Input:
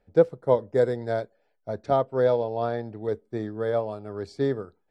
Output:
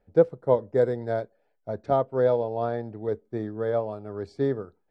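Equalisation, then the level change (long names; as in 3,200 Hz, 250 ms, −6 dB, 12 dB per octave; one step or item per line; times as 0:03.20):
high-shelf EQ 2,700 Hz −9 dB
0.0 dB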